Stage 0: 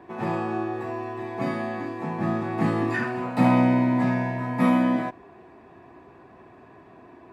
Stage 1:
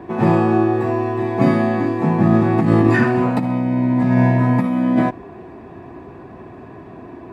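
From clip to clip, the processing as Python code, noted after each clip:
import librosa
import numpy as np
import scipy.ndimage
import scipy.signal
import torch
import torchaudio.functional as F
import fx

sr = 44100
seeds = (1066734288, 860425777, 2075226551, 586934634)

y = fx.low_shelf(x, sr, hz=470.0, db=9.0)
y = fx.over_compress(y, sr, threshold_db=-19.0, ratio=-1.0)
y = y * 10.0 ** (4.5 / 20.0)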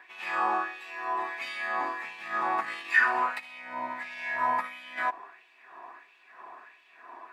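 y = fx.filter_lfo_highpass(x, sr, shape='sine', hz=1.5, low_hz=950.0, high_hz=2900.0, q=2.5)
y = y * 10.0 ** (-6.0 / 20.0)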